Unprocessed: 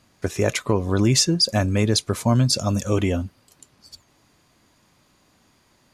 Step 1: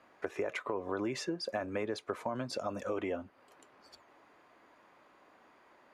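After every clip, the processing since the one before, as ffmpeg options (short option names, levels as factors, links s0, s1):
-filter_complex "[0:a]acrossover=split=330 2300:gain=0.0708 1 0.0794[s0][s1][s2];[s0][s1][s2]amix=inputs=3:normalize=0,alimiter=limit=0.141:level=0:latency=1:release=38,acompressor=threshold=0.00891:ratio=2.5,volume=1.5"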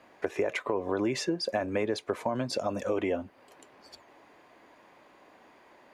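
-af "equalizer=f=1300:w=3.1:g=-6.5,volume=2.11"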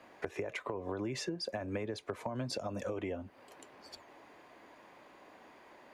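-filter_complex "[0:a]acrossover=split=140[s0][s1];[s1]acompressor=threshold=0.0178:ratio=10[s2];[s0][s2]amix=inputs=2:normalize=0"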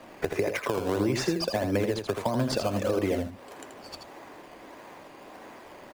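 -filter_complex "[0:a]asplit=2[s0][s1];[s1]acrusher=samples=16:mix=1:aa=0.000001:lfo=1:lforange=16:lforate=1.6,volume=0.631[s2];[s0][s2]amix=inputs=2:normalize=0,aecho=1:1:81:0.473,volume=2.11"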